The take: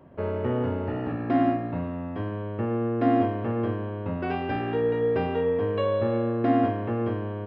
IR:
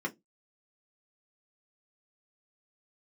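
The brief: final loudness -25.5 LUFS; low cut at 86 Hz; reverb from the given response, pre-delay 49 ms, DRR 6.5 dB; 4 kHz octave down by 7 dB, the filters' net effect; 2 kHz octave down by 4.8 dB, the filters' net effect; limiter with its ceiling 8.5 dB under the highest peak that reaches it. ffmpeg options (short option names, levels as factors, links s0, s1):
-filter_complex "[0:a]highpass=86,equalizer=f=2000:t=o:g=-4.5,equalizer=f=4000:t=o:g=-8.5,alimiter=limit=0.106:level=0:latency=1,asplit=2[s0][s1];[1:a]atrim=start_sample=2205,adelay=49[s2];[s1][s2]afir=irnorm=-1:irlink=0,volume=0.282[s3];[s0][s3]amix=inputs=2:normalize=0,volume=1.41"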